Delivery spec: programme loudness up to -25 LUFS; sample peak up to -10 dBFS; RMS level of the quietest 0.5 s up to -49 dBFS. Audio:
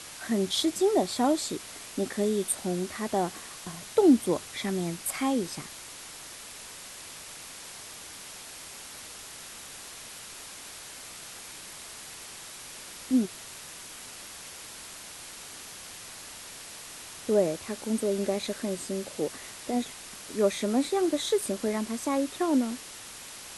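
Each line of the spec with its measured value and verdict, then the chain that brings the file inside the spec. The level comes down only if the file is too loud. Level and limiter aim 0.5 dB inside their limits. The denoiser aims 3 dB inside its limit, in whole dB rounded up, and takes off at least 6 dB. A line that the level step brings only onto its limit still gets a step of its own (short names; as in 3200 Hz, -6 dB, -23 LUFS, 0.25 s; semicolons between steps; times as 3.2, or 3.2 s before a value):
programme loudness -31.5 LUFS: OK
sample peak -10.5 dBFS: OK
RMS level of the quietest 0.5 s -44 dBFS: fail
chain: denoiser 8 dB, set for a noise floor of -44 dBFS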